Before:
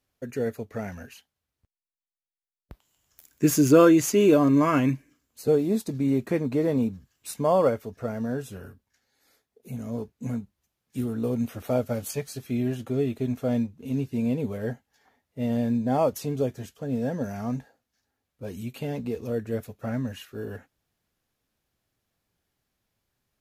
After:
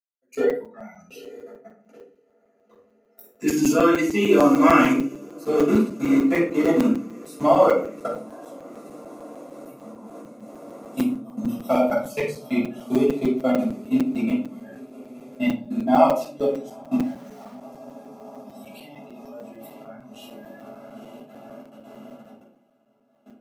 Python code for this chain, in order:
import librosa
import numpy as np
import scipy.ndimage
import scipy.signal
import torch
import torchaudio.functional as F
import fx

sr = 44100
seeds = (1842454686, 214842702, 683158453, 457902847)

p1 = fx.transient(x, sr, attack_db=8, sustain_db=1)
p2 = fx.noise_reduce_blind(p1, sr, reduce_db=27)
p3 = fx.over_compress(p2, sr, threshold_db=-37.0, ratio=-1.0, at=(9.92, 10.39), fade=0.02)
p4 = fx.low_shelf(p3, sr, hz=370.0, db=9.0, at=(11.17, 11.63))
p5 = p4 + fx.echo_diffused(p4, sr, ms=897, feedback_pct=72, wet_db=-15.0, dry=0)
p6 = fx.level_steps(p5, sr, step_db=24)
p7 = fx.sample_gate(p6, sr, floor_db=-53.0, at=(16.98, 17.55))
p8 = scipy.signal.sosfilt(scipy.signal.butter(4, 220.0, 'highpass', fs=sr, output='sos'), p7)
p9 = fx.room_shoebox(p8, sr, seeds[0], volume_m3=410.0, walls='furnished', distance_m=6.7)
p10 = fx.dynamic_eq(p9, sr, hz=2200.0, q=0.91, threshold_db=-40.0, ratio=4.0, max_db=7)
p11 = fx.buffer_crackle(p10, sr, first_s=0.35, period_s=0.15, block=256, kind='zero')
y = p11 * 10.0 ** (-2.0 / 20.0)